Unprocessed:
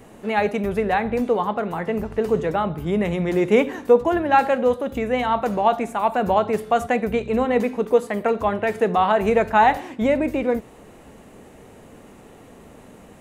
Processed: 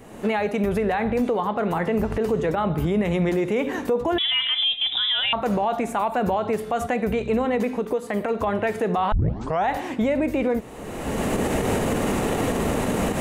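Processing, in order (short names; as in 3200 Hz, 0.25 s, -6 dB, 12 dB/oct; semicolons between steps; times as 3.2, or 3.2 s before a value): recorder AGC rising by 31 dB/s; 4.18–5.33 inverted band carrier 3700 Hz; 7.71–8.47 compressor 5:1, threshold -19 dBFS, peak gain reduction 8 dB; 9.12 tape start 0.56 s; limiter -14.5 dBFS, peak gain reduction 9.5 dB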